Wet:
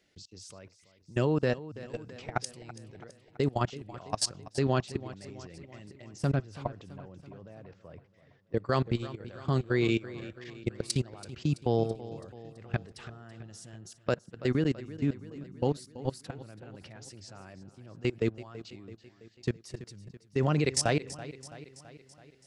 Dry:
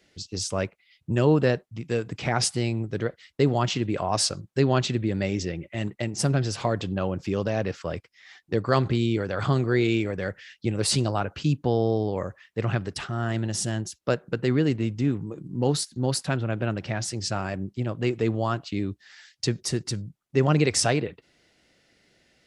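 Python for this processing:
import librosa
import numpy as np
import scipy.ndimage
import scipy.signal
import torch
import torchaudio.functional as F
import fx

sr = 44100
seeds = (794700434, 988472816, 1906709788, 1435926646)

y = fx.lowpass(x, sr, hz=1700.0, slope=6, at=(6.36, 8.57))
y = fx.level_steps(y, sr, step_db=23)
y = fx.echo_feedback(y, sr, ms=331, feedback_pct=58, wet_db=-16.0)
y = y * 10.0 ** (-2.5 / 20.0)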